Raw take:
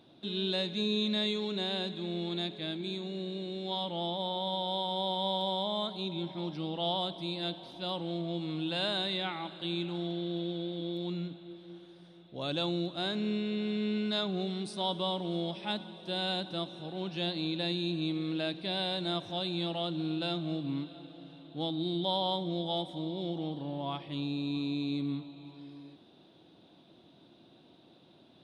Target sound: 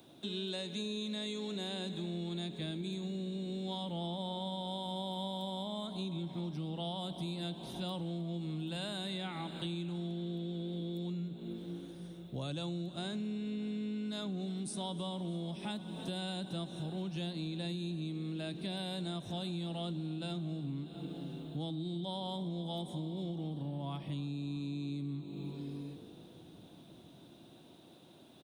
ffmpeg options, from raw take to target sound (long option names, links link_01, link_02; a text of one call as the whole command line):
ffmpeg -i in.wav -filter_complex "[0:a]acrossover=split=180|440|3000[link_01][link_02][link_03][link_04];[link_01]dynaudnorm=framelen=220:gausssize=17:maxgain=12.5dB[link_05];[link_05][link_02][link_03][link_04]amix=inputs=4:normalize=0,aexciter=amount=4.3:drive=6.6:freq=6200,asplit=5[link_06][link_07][link_08][link_09][link_10];[link_07]adelay=310,afreqshift=52,volume=-20dB[link_11];[link_08]adelay=620,afreqshift=104,volume=-25.7dB[link_12];[link_09]adelay=930,afreqshift=156,volume=-31.4dB[link_13];[link_10]adelay=1240,afreqshift=208,volume=-37dB[link_14];[link_06][link_11][link_12][link_13][link_14]amix=inputs=5:normalize=0,acompressor=threshold=-37dB:ratio=10,volume=1dB" out.wav